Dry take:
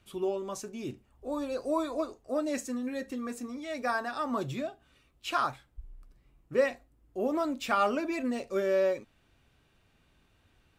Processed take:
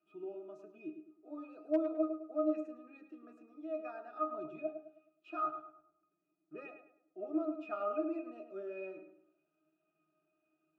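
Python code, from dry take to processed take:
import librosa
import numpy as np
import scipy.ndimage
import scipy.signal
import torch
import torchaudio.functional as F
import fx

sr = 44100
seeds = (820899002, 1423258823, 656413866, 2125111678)

y = fx.octave_resonator(x, sr, note='D#', decay_s=0.21)
y = np.clip(y, -10.0 ** (-26.5 / 20.0), 10.0 ** (-26.5 / 20.0))
y = scipy.signal.sosfilt(scipy.signal.butter(4, 260.0, 'highpass', fs=sr, output='sos'), y)
y = fx.high_shelf(y, sr, hz=5800.0, db=-6.0)
y = fx.echo_filtered(y, sr, ms=105, feedback_pct=38, hz=2500.0, wet_db=-8)
y = y * librosa.db_to_amplitude(5.0)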